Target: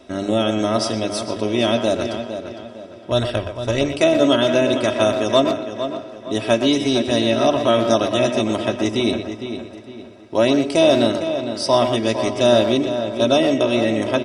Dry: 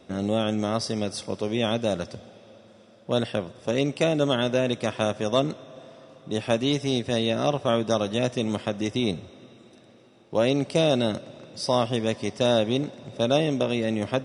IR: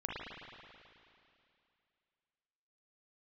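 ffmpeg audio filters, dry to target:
-filter_complex "[0:a]bandreject=f=50:t=h:w=6,bandreject=f=100:t=h:w=6,bandreject=f=150:t=h:w=6,bandreject=f=200:t=h:w=6,bandreject=f=250:t=h:w=6,bandreject=f=300:t=h:w=6,bandreject=f=350:t=h:w=6,bandreject=f=400:t=h:w=6,aecho=1:1:3.1:0.64,asplit=2[a][b];[b]adelay=458,lowpass=f=3.6k:p=1,volume=-9dB,asplit=2[c][d];[d]adelay=458,lowpass=f=3.6k:p=1,volume=0.38,asplit=2[e][f];[f]adelay=458,lowpass=f=3.6k:p=1,volume=0.38,asplit=2[g][h];[h]adelay=458,lowpass=f=3.6k:p=1,volume=0.38[i];[c][e][g][i]amix=inputs=4:normalize=0[j];[a][j]amix=inputs=2:normalize=0,asplit=3[k][l][m];[k]afade=t=out:st=3.1:d=0.02[n];[l]asubboost=boost=10:cutoff=80,afade=t=in:st=3.1:d=0.02,afade=t=out:st=3.99:d=0.02[o];[m]afade=t=in:st=3.99:d=0.02[p];[n][o][p]amix=inputs=3:normalize=0,asplit=2[q][r];[r]adelay=120,highpass=300,lowpass=3.4k,asoftclip=type=hard:threshold=-15.5dB,volume=-7dB[s];[q][s]amix=inputs=2:normalize=0,volume=5dB"

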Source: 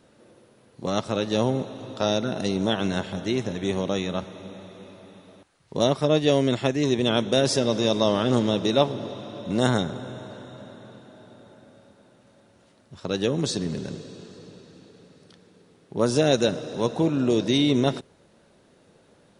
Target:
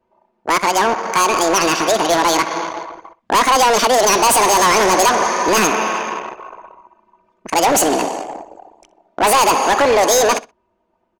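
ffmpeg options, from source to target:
-filter_complex "[0:a]dynaudnorm=f=1000:g=7:m=11.5dB,asplit=2[a][b];[b]highpass=f=720:p=1,volume=22dB,asoftclip=type=tanh:threshold=-0.5dB[c];[a][c]amix=inputs=2:normalize=0,lowpass=f=3.5k:p=1,volume=-6dB,asplit=2[d][e];[e]acompressor=threshold=-20dB:ratio=6,volume=-2dB[f];[d][f]amix=inputs=2:normalize=0,asoftclip=type=hard:threshold=-10dB,anlmdn=1580,asplit=2[g][h];[h]adelay=108,lowpass=f=3.8k:p=1,volume=-18dB,asplit=2[i][j];[j]adelay=108,lowpass=f=3.8k:p=1,volume=0.18[k];[g][i][k]amix=inputs=3:normalize=0,asetrate=76440,aresample=44100"

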